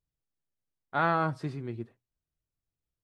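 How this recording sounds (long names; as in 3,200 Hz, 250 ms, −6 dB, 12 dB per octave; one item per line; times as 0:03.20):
background noise floor −91 dBFS
spectral slope −5.5 dB per octave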